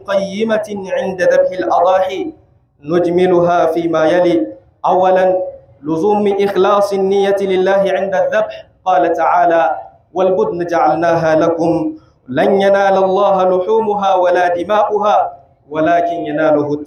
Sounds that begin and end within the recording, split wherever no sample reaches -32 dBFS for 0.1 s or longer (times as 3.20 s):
2.84–4.57 s
4.84–5.57 s
5.83–8.61 s
8.86–9.89 s
10.15–11.97 s
12.29–15.36 s